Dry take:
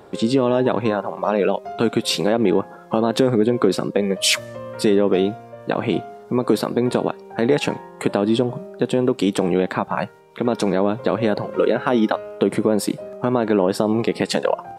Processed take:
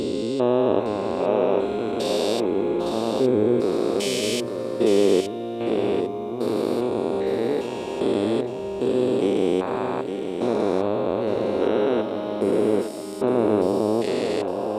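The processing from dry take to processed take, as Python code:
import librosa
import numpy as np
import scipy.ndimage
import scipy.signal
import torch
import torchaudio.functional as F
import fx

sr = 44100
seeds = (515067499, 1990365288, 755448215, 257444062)

y = fx.spec_steps(x, sr, hold_ms=400)
y = fx.graphic_eq_15(y, sr, hz=(160, 400, 1600), db=(-11, 3, -6))
y = y + 10.0 ** (-7.5 / 20.0) * np.pad(y, (int(861 * sr / 1000.0), 0))[:len(y)]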